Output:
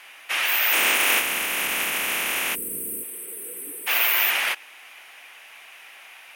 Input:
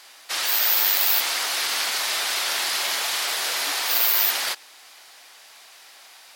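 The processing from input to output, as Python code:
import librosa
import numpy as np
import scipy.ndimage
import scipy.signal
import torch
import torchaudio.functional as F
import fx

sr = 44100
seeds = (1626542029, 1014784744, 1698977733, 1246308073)

y = fx.spec_clip(x, sr, under_db=27, at=(0.72, 3.02), fade=0.02)
y = fx.peak_eq(y, sr, hz=11000.0, db=8.5, octaves=2.4)
y = fx.spec_box(y, sr, start_s=2.55, length_s=1.32, low_hz=510.0, high_hz=7900.0, gain_db=-29)
y = fx.high_shelf_res(y, sr, hz=3400.0, db=-9.5, q=3.0)
y = fx.notch(y, sr, hz=7600.0, q=7.9)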